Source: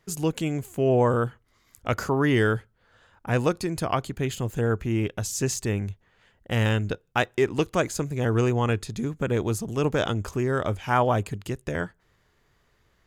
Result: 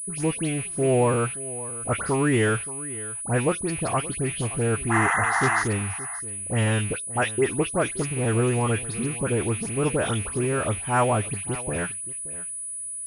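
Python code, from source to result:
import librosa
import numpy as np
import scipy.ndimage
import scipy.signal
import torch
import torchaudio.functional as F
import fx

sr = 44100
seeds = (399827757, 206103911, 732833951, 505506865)

p1 = fx.rattle_buzz(x, sr, strikes_db=-35.0, level_db=-27.0)
p2 = fx.spec_paint(p1, sr, seeds[0], shape='noise', start_s=4.88, length_s=0.73, low_hz=660.0, high_hz=2100.0, level_db=-23.0)
p3 = fx.dispersion(p2, sr, late='highs', ms=96.0, hz=2400.0)
p4 = p3 + fx.echo_single(p3, sr, ms=574, db=-17.0, dry=0)
y = fx.pwm(p4, sr, carrier_hz=9900.0)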